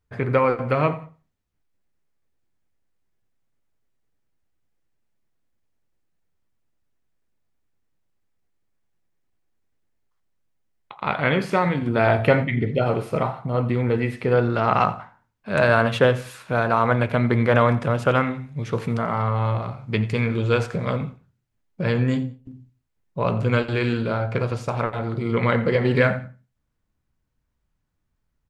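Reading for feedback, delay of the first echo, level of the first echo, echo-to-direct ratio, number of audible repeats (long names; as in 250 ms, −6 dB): 27%, 88 ms, −18.0 dB, −17.5 dB, 2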